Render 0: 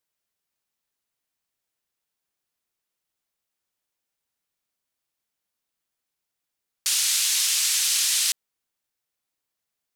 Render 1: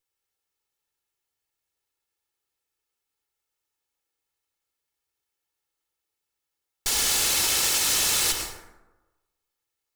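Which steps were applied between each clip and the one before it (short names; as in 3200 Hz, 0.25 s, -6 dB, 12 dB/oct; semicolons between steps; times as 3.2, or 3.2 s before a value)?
minimum comb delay 2.3 ms; plate-style reverb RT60 1.1 s, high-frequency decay 0.45×, pre-delay 85 ms, DRR 3 dB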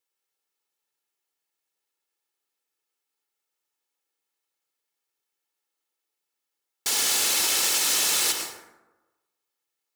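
HPF 210 Hz 12 dB/oct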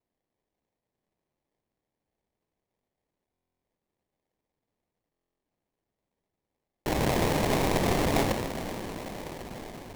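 diffused feedback echo 0.499 s, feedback 69%, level -11.5 dB; sample-rate reducer 1400 Hz, jitter 20%; stuck buffer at 3.32/5.11, samples 1024, times 12; gain -2.5 dB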